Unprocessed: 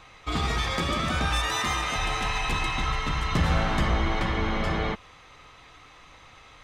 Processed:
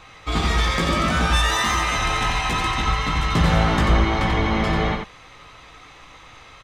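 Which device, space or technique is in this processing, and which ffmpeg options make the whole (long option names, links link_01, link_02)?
slapback doubling: -filter_complex "[0:a]asplit=3[link_01][link_02][link_03];[link_02]adelay=18,volume=-6.5dB[link_04];[link_03]adelay=90,volume=-4.5dB[link_05];[link_01][link_04][link_05]amix=inputs=3:normalize=0,volume=4dB"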